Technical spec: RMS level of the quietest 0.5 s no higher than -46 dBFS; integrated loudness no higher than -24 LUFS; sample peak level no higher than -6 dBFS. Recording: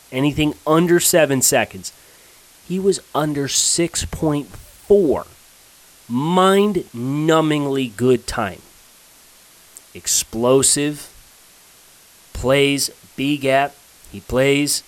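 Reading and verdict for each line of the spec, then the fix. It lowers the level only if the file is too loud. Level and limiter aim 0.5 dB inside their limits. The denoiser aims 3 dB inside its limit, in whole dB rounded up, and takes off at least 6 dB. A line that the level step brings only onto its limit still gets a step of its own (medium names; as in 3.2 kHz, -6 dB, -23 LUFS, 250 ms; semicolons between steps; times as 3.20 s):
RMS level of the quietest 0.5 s -48 dBFS: pass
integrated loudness -17.5 LUFS: fail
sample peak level -3.0 dBFS: fail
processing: trim -7 dB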